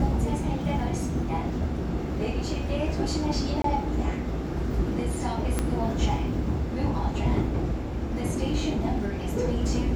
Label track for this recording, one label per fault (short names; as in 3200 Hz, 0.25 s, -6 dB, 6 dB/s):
3.620000	3.640000	gap 23 ms
5.590000	5.590000	pop -12 dBFS